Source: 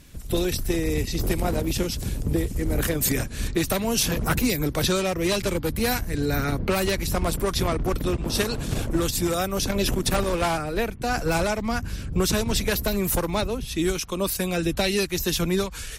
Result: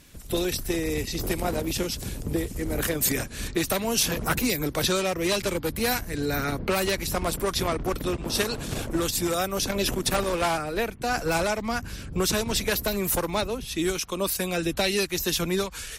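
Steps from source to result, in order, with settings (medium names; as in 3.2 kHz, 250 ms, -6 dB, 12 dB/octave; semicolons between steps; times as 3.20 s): bass shelf 210 Hz -7.5 dB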